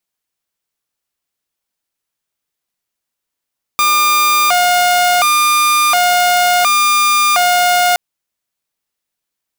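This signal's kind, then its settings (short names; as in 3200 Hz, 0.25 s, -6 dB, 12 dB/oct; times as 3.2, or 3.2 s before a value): siren hi-lo 714–1200 Hz 0.7/s saw -7 dBFS 4.17 s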